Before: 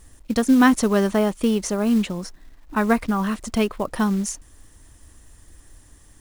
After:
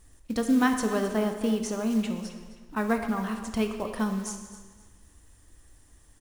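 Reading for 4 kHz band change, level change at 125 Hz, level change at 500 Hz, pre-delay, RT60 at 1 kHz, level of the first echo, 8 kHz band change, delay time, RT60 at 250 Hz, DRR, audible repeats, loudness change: −7.0 dB, −7.5 dB, −6.5 dB, 10 ms, 1.5 s, −14.5 dB, −7.0 dB, 263 ms, 1.4 s, 5.0 dB, 2, −7.0 dB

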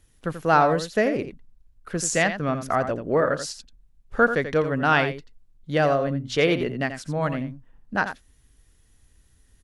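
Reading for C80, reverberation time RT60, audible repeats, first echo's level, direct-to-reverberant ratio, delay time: no reverb audible, no reverb audible, 1, −10.0 dB, no reverb audible, 86 ms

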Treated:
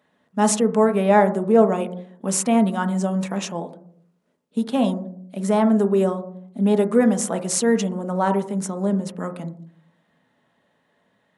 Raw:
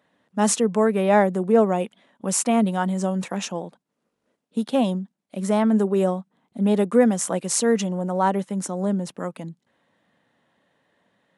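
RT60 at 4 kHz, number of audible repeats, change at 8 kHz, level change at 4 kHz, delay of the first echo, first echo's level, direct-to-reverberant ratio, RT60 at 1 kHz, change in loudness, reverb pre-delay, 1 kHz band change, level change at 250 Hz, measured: 0.40 s, no echo audible, 0.0 dB, 0.0 dB, no echo audible, no echo audible, 7.0 dB, 0.55 s, +1.5 dB, 4 ms, +1.5 dB, +1.5 dB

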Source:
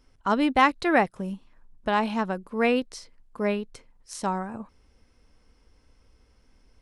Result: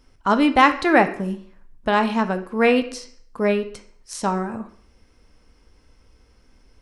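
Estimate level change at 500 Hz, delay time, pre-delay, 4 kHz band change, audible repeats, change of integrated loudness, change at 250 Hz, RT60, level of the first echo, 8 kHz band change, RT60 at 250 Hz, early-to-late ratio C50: +6.0 dB, no echo audible, 6 ms, +5.5 dB, no echo audible, +5.5 dB, +5.5 dB, 0.55 s, no echo audible, +5.5 dB, 0.55 s, 12.5 dB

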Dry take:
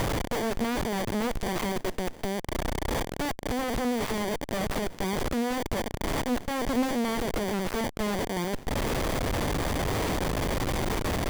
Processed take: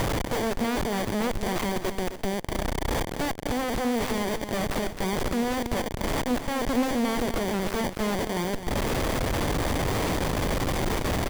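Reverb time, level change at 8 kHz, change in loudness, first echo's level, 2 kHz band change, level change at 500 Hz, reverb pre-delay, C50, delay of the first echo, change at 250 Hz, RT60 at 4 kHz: no reverb audible, +2.0 dB, +2.0 dB, −10.5 dB, +2.0 dB, +2.0 dB, no reverb audible, no reverb audible, 260 ms, +2.0 dB, no reverb audible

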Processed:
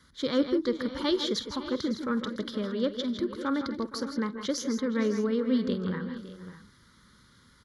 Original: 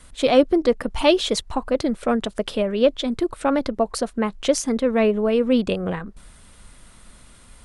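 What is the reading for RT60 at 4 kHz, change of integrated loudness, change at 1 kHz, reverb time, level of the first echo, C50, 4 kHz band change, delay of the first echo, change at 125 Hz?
no reverb audible, −8.5 dB, −11.5 dB, no reverb audible, −18.0 dB, no reverb audible, −7.0 dB, 48 ms, −5.0 dB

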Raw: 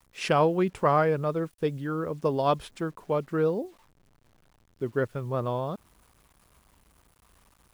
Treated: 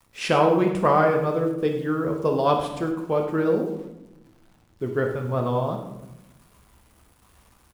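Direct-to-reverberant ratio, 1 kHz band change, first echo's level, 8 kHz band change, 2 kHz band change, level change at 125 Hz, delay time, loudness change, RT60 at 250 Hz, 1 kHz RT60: 2.0 dB, +4.5 dB, −13.5 dB, can't be measured, +4.5 dB, +3.0 dB, 99 ms, +4.5 dB, 1.4 s, 0.85 s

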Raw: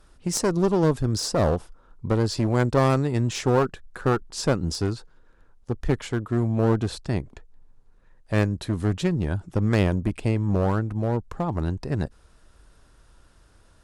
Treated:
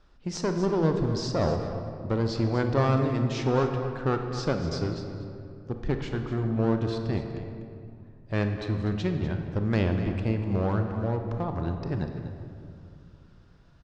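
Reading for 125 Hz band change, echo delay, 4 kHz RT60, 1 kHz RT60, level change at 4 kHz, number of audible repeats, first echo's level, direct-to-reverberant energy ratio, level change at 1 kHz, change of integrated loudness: −3.0 dB, 246 ms, 1.4 s, 2.4 s, −5.0 dB, 1, −12.0 dB, 4.5 dB, −3.5 dB, −3.5 dB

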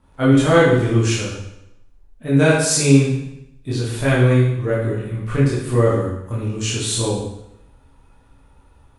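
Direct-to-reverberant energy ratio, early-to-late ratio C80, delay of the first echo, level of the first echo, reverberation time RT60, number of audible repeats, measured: −9.0 dB, 4.5 dB, no echo audible, no echo audible, 0.80 s, no echo audible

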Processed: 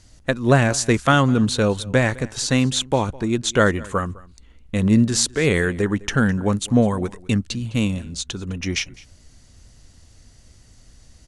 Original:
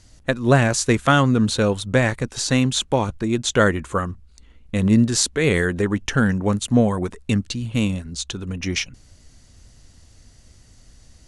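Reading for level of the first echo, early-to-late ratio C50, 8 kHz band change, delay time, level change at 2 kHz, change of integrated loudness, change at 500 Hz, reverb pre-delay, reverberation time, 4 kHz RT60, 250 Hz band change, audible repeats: −22.0 dB, no reverb audible, 0.0 dB, 207 ms, 0.0 dB, 0.0 dB, 0.0 dB, no reverb audible, no reverb audible, no reverb audible, 0.0 dB, 1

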